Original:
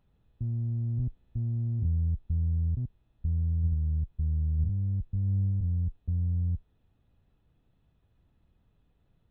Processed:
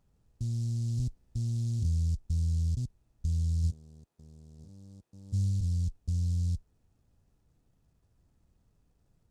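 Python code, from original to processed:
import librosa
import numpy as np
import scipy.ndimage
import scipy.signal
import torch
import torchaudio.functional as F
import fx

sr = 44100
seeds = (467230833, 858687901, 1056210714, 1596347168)

y = fx.highpass(x, sr, hz=360.0, slope=12, at=(3.7, 5.32), fade=0.02)
y = fx.noise_mod_delay(y, sr, seeds[0], noise_hz=5800.0, depth_ms=0.071)
y = y * librosa.db_to_amplitude(-1.0)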